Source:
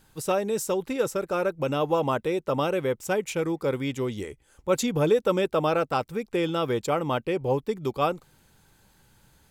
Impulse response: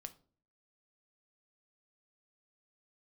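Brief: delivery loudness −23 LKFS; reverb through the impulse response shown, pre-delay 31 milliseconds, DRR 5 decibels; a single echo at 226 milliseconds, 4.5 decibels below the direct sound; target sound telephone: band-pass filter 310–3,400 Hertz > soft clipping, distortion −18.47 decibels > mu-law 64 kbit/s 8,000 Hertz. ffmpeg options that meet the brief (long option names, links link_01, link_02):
-filter_complex "[0:a]aecho=1:1:226:0.596,asplit=2[link_01][link_02];[1:a]atrim=start_sample=2205,adelay=31[link_03];[link_02][link_03]afir=irnorm=-1:irlink=0,volume=0.5dB[link_04];[link_01][link_04]amix=inputs=2:normalize=0,highpass=310,lowpass=3400,asoftclip=threshold=-15.5dB,volume=4dB" -ar 8000 -c:a pcm_mulaw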